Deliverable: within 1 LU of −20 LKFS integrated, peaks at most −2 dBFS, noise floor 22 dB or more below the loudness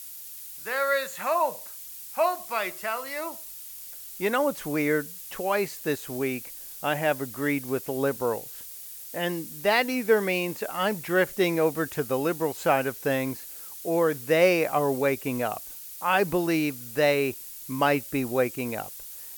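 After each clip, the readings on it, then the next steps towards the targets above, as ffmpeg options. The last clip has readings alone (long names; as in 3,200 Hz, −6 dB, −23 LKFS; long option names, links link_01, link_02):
background noise floor −42 dBFS; target noise floor −49 dBFS; integrated loudness −26.5 LKFS; sample peak −7.5 dBFS; target loudness −20.0 LKFS
→ -af "afftdn=noise_reduction=7:noise_floor=-42"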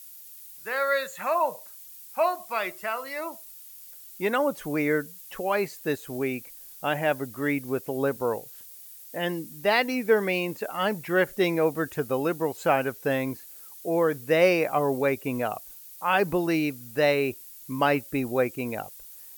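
background noise floor −46 dBFS; target noise floor −49 dBFS
→ -af "afftdn=noise_reduction=6:noise_floor=-46"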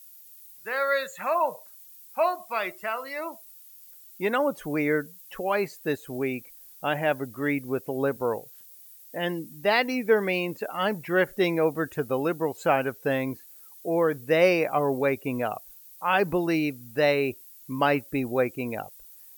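background noise floor −50 dBFS; integrated loudness −27.0 LKFS; sample peak −8.0 dBFS; target loudness −20.0 LKFS
→ -af "volume=7dB,alimiter=limit=-2dB:level=0:latency=1"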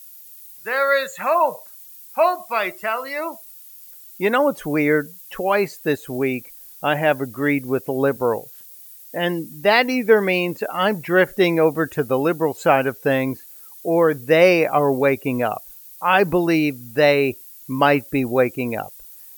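integrated loudness −20.0 LKFS; sample peak −2.0 dBFS; background noise floor −43 dBFS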